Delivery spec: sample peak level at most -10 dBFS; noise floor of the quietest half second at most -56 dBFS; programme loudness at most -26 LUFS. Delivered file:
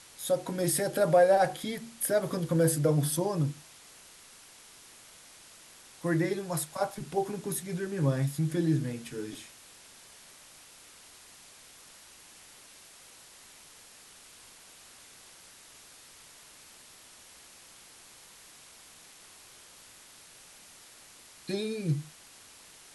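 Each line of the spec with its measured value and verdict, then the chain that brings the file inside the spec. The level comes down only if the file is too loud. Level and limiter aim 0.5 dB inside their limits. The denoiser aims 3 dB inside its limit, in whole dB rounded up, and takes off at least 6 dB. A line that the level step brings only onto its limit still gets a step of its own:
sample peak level -12.0 dBFS: OK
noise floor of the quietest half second -54 dBFS: fail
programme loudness -29.5 LUFS: OK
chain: denoiser 6 dB, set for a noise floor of -54 dBFS

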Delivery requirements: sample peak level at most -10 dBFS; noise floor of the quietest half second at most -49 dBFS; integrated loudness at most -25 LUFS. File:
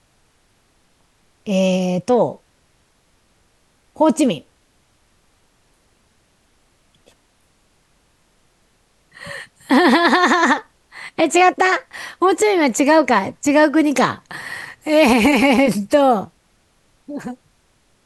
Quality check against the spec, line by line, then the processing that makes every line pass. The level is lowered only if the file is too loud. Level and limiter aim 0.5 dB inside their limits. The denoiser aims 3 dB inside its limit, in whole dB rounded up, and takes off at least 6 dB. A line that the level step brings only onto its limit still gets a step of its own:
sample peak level -3.0 dBFS: fail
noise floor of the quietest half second -60 dBFS: OK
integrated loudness -16.0 LUFS: fail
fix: gain -9.5 dB

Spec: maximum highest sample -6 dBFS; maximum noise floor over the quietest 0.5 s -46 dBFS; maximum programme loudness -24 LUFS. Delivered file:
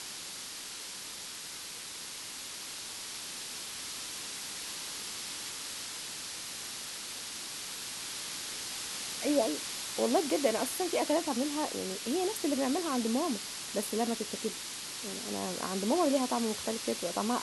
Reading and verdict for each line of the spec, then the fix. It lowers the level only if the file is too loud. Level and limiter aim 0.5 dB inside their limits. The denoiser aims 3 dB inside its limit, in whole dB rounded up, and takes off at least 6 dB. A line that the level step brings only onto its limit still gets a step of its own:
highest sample -15.0 dBFS: OK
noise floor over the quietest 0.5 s -43 dBFS: fail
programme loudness -34.0 LUFS: OK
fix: denoiser 6 dB, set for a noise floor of -43 dBFS

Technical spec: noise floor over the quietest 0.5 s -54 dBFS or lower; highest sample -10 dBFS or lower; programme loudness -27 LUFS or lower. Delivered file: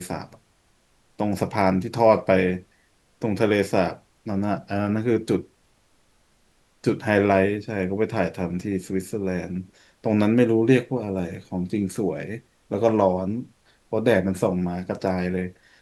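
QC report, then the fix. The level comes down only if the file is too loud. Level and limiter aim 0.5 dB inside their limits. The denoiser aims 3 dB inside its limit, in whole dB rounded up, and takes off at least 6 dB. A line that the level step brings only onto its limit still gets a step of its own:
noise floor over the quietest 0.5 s -63 dBFS: OK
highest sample -5.5 dBFS: fail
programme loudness -23.5 LUFS: fail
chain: gain -4 dB; limiter -10.5 dBFS

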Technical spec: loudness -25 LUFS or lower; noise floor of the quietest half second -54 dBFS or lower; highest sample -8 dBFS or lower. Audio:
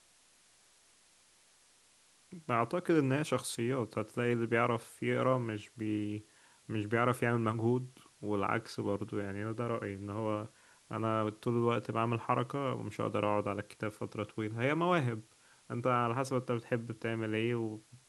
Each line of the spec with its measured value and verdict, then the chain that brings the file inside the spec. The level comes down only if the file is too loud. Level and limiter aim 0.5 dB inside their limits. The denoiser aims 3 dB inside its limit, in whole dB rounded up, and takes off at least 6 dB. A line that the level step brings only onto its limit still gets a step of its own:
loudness -34.5 LUFS: OK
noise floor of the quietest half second -66 dBFS: OK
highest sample -13.5 dBFS: OK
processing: none

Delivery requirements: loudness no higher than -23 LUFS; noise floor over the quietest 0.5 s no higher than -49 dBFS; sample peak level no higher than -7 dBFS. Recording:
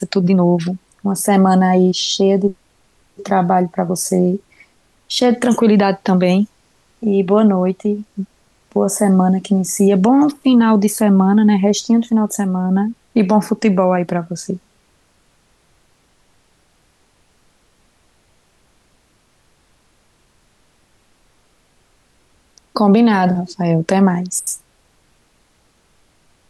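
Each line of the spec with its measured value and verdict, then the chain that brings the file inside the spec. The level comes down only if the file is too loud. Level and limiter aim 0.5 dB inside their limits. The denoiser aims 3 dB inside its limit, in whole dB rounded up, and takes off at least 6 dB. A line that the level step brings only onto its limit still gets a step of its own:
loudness -15.5 LUFS: fail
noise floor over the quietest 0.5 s -58 dBFS: OK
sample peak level -4.0 dBFS: fail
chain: gain -8 dB

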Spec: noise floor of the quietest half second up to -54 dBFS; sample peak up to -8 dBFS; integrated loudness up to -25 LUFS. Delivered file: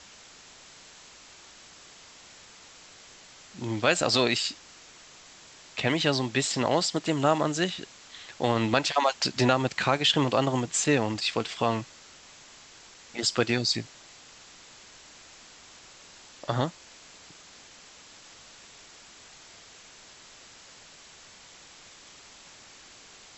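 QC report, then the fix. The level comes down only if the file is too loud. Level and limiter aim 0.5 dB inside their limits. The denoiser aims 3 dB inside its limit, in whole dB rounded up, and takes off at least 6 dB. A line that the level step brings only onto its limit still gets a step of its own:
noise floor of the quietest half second -51 dBFS: fail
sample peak -6.5 dBFS: fail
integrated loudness -26.0 LUFS: OK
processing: denoiser 6 dB, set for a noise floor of -51 dBFS; limiter -8.5 dBFS

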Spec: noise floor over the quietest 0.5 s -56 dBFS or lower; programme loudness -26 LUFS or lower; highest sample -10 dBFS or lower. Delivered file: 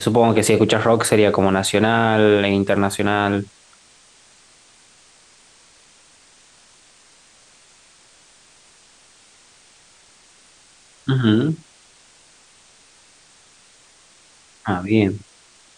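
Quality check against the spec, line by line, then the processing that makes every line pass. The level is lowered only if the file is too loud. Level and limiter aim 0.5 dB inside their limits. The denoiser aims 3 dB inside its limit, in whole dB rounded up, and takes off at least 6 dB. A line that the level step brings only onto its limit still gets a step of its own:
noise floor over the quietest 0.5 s -52 dBFS: fail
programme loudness -18.0 LUFS: fail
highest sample -3.0 dBFS: fail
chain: gain -8.5 dB

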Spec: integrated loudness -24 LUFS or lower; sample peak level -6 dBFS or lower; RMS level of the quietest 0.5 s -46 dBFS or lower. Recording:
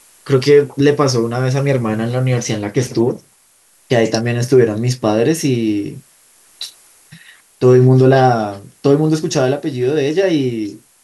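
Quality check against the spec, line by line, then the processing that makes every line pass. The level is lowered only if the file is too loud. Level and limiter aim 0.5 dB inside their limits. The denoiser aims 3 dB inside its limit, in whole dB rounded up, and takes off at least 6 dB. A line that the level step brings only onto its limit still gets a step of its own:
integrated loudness -15.0 LUFS: fail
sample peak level -1.5 dBFS: fail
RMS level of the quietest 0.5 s -53 dBFS: OK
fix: gain -9.5 dB

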